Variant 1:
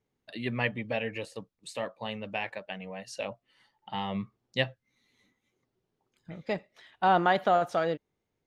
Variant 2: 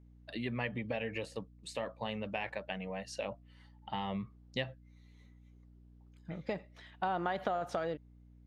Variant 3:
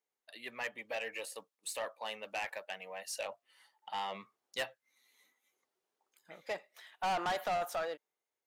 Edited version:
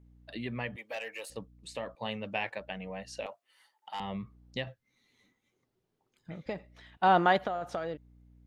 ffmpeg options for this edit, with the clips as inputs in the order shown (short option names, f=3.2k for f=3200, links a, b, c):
-filter_complex "[2:a]asplit=2[a][b];[0:a]asplit=3[c][d][e];[1:a]asplit=6[f][g][h][i][j][k];[f]atrim=end=0.762[l];[a]atrim=start=0.758:end=1.302[m];[g]atrim=start=1.298:end=1.952[n];[c]atrim=start=1.948:end=2.602[o];[h]atrim=start=2.598:end=3.262[p];[b]atrim=start=3.258:end=4.002[q];[i]atrim=start=3.998:end=4.672[r];[d]atrim=start=4.668:end=6.462[s];[j]atrim=start=6.458:end=6.972[t];[e]atrim=start=6.968:end=7.382[u];[k]atrim=start=7.378[v];[l][m]acrossfade=d=0.004:c1=hsin:c2=hsin[w];[w][n]acrossfade=d=0.004:c1=hsin:c2=hsin[x];[x][o]acrossfade=d=0.004:c1=hsin:c2=hsin[y];[y][p]acrossfade=d=0.004:c1=hsin:c2=hsin[z];[z][q]acrossfade=d=0.004:c1=hsin:c2=hsin[aa];[aa][r]acrossfade=d=0.004:c1=hsin:c2=hsin[ab];[ab][s]acrossfade=d=0.004:c1=hsin:c2=hsin[ac];[ac][t]acrossfade=d=0.004:c1=hsin:c2=hsin[ad];[ad][u]acrossfade=d=0.004:c1=hsin:c2=hsin[ae];[ae][v]acrossfade=d=0.004:c1=hsin:c2=hsin"